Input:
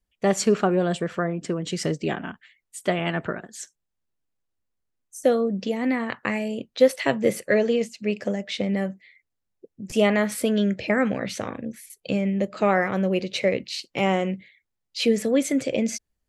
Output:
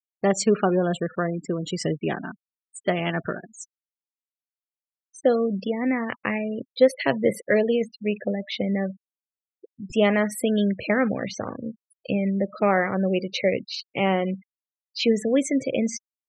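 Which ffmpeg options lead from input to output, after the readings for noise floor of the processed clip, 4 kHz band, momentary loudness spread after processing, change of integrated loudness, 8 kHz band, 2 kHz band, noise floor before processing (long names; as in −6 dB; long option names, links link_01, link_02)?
below −85 dBFS, −1.0 dB, 12 LU, 0.0 dB, −2.0 dB, −0.5 dB, −80 dBFS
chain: -af "afftfilt=real='re*gte(hypot(re,im),0.0282)':imag='im*gte(hypot(re,im),0.0282)':win_size=1024:overlap=0.75"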